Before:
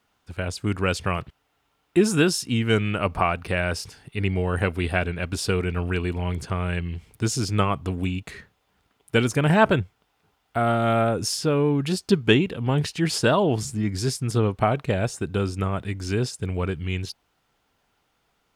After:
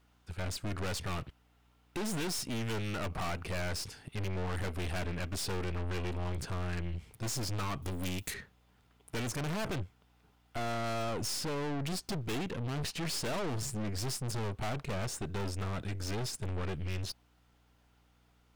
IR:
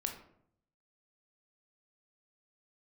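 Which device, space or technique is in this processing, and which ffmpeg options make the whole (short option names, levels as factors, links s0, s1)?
valve amplifier with mains hum: -filter_complex "[0:a]aeval=exprs='(tanh(50.1*val(0)+0.55)-tanh(0.55))/50.1':c=same,aeval=exprs='val(0)+0.000447*(sin(2*PI*60*n/s)+sin(2*PI*2*60*n/s)/2+sin(2*PI*3*60*n/s)/3+sin(2*PI*4*60*n/s)/4+sin(2*PI*5*60*n/s)/5)':c=same,asettb=1/sr,asplit=3[s0][s1][s2];[s0]atrim=end=7.824[s3];[s1]atrim=start=7.82:end=8.34,asetpts=PTS-STARTPTS,afade=t=in:d=0.004:c=qsin,afade=t=out:st=0.516:d=0.004:c=qsin,aemphasis=mode=production:type=75fm[s4];[s2]atrim=start=8.336[s5];[s3][s4]acrossfade=d=0.004:c1=hsin:c2=qsin[s6];[s6][s5]acrossfade=d=0.004:c1=qsin:c2=hsin"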